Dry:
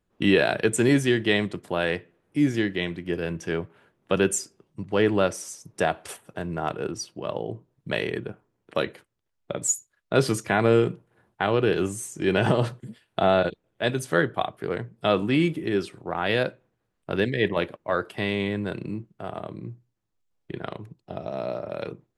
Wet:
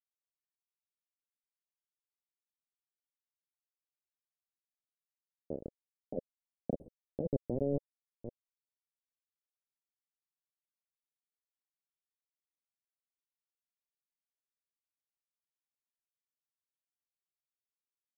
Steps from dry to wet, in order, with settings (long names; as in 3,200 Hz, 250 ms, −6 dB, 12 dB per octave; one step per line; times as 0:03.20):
gliding playback speed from 148% → 96%
source passing by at 0:06.49, 10 m/s, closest 2.1 metres
bit reduction 5 bits
compressor whose output falls as the input rises −35 dBFS, ratio −1
elliptic low-pass filter 550 Hz, stop band 60 dB
level +6.5 dB